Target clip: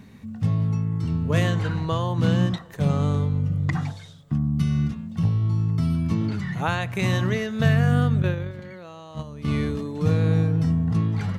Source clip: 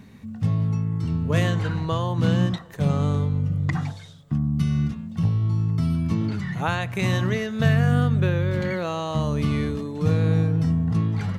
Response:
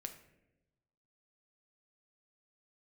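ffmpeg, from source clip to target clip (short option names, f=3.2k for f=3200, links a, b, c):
-filter_complex "[0:a]asettb=1/sr,asplit=3[a][b][c];[a]atrim=end=8.224[d];[b]atrim=start=8.22:end=9.48,asetpts=PTS-STARTPTS,afade=t=in:d=0.004:c=qsin,afade=t=out:st=1.256:d=0.004:c=qsin,agate=range=-14dB:threshold=-20dB:ratio=16:detection=peak[e];[c]atrim=start=9.476[f];[d][e]acrossfade=d=0.004:c1=hsin:c2=qsin[g];[g][f]acrossfade=d=0.004:c1=qsin:c2=hsin"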